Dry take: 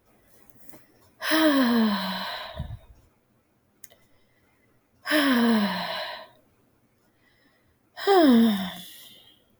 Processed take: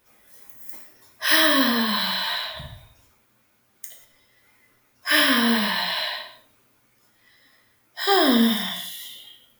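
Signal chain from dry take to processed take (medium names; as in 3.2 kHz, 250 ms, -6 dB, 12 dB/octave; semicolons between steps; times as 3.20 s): tilt shelf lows -7 dB; gated-style reverb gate 210 ms falling, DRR 1 dB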